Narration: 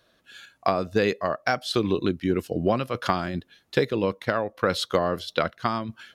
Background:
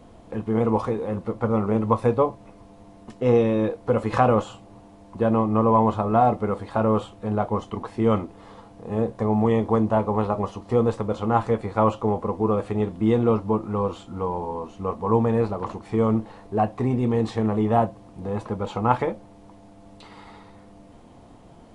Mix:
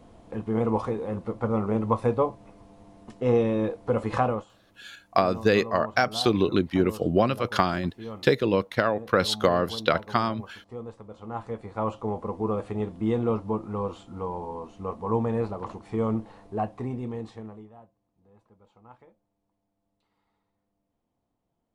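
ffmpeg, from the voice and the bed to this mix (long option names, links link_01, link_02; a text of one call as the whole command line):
ffmpeg -i stem1.wav -i stem2.wav -filter_complex "[0:a]adelay=4500,volume=1.5dB[link_01];[1:a]volume=9dB,afade=type=out:start_time=4.15:duration=0.31:silence=0.188365,afade=type=in:start_time=11.11:duration=1.22:silence=0.237137,afade=type=out:start_time=16.42:duration=1.3:silence=0.0530884[link_02];[link_01][link_02]amix=inputs=2:normalize=0" out.wav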